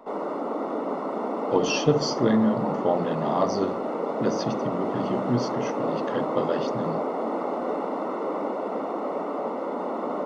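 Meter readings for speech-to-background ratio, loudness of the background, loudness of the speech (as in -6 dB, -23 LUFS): 1.5 dB, -29.0 LUFS, -27.5 LUFS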